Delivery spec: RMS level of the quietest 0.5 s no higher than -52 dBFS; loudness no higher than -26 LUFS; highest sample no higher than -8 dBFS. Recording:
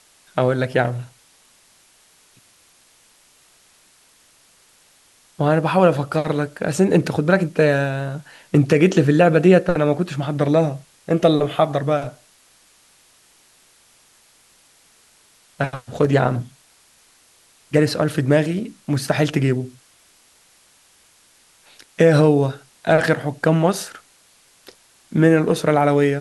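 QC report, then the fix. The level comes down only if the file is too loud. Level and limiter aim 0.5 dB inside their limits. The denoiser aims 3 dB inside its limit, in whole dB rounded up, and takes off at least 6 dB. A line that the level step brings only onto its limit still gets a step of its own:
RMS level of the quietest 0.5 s -55 dBFS: OK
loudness -18.5 LUFS: fail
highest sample -2.0 dBFS: fail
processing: gain -8 dB

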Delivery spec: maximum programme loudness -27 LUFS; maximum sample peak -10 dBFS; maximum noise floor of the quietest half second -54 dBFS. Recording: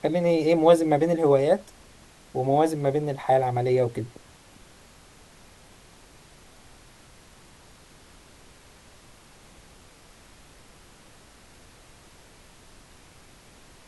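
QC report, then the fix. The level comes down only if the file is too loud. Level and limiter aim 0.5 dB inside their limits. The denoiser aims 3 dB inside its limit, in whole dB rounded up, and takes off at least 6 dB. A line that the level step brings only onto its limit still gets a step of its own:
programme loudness -22.5 LUFS: fail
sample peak -5.0 dBFS: fail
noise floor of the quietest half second -52 dBFS: fail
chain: gain -5 dB; limiter -10.5 dBFS

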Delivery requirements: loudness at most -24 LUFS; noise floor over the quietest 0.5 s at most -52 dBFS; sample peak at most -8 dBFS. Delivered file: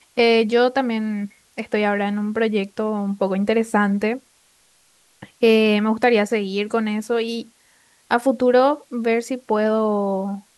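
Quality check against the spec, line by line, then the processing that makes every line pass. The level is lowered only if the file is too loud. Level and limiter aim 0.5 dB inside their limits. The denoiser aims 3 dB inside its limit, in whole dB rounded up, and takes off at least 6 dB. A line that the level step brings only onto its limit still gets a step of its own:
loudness -20.0 LUFS: fail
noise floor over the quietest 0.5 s -58 dBFS: OK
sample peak -4.5 dBFS: fail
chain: gain -4.5 dB

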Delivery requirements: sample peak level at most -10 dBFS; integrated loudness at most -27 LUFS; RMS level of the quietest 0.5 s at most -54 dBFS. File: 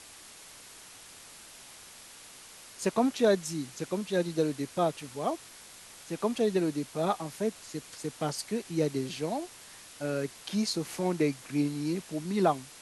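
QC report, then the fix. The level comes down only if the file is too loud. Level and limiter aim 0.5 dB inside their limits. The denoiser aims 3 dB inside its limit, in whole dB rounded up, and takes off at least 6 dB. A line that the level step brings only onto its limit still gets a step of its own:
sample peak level -13.0 dBFS: OK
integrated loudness -31.5 LUFS: OK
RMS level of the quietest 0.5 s -50 dBFS: fail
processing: denoiser 7 dB, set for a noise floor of -50 dBFS

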